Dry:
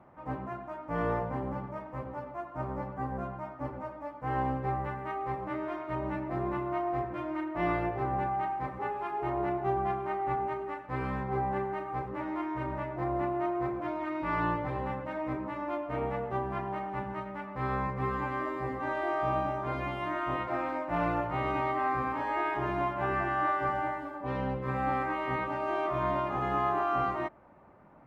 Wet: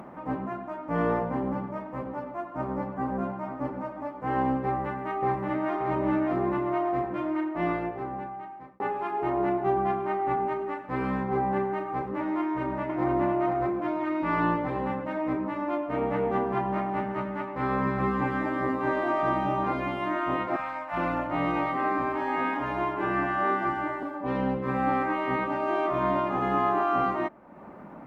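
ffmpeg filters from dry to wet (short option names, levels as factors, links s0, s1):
-filter_complex "[0:a]asplit=2[s0][s1];[s1]afade=t=in:st=2.44:d=0.01,afade=t=out:st=3.09:d=0.01,aecho=0:1:490|980|1470|1960|2450|2940|3430|3920:0.266073|0.172947|0.112416|0.0730702|0.0474956|0.0308721|0.0200669|0.0130435[s2];[s0][s2]amix=inputs=2:normalize=0,asplit=2[s3][s4];[s4]afade=t=in:st=4.64:d=0.01,afade=t=out:st=5.75:d=0.01,aecho=0:1:580|1160|1740|2320|2900|3480:0.749894|0.337452|0.151854|0.0683341|0.0307503|0.0138377[s5];[s3][s5]amix=inputs=2:normalize=0,asplit=2[s6][s7];[s7]afade=t=in:st=12.4:d=0.01,afade=t=out:st=13.16:d=0.01,aecho=0:1:490|980:0.630957|0.0630957[s8];[s6][s8]amix=inputs=2:normalize=0,asplit=3[s9][s10][s11];[s9]afade=t=out:st=16.1:d=0.02[s12];[s10]aecho=1:1:221:0.631,afade=t=in:st=16.1:d=0.02,afade=t=out:st=19.72:d=0.02[s13];[s11]afade=t=in:st=19.72:d=0.02[s14];[s12][s13][s14]amix=inputs=3:normalize=0,asettb=1/sr,asplit=3[s15][s16][s17];[s15]atrim=end=20.564[s18];[s16]atrim=start=20.56:end=24.03,asetpts=PTS-STARTPTS,afade=t=in:d=0.004:c=qsin,afade=t=out:st=3.466:d=0.004:c=qsin,acrossover=split=170|670[s19][s20][s21];[s19]adelay=30[s22];[s20]adelay=410[s23];[s22][s23][s21]amix=inputs=3:normalize=0,atrim=end_sample=153027[s24];[s17]atrim=start=24.026[s25];[s18][s24]acrossfade=d=0.004:c1=hsin:c2=qsin[s26];[s26][s25]acrossfade=d=0.004:c1=qsin:c2=hsin,asplit=2[s27][s28];[s27]atrim=end=8.8,asetpts=PTS-STARTPTS,afade=t=out:st=7.18:d=1.62[s29];[s28]atrim=start=8.8,asetpts=PTS-STARTPTS,afade=t=in:d=0.004:c=hsin[s30];[s29][s30]concat=n=2:v=0:a=1,bass=f=250:g=5,treble=f=4000:g=-2,acompressor=mode=upward:threshold=0.0112:ratio=2.5,lowshelf=f=150:t=q:w=1.5:g=-10,volume=1.5"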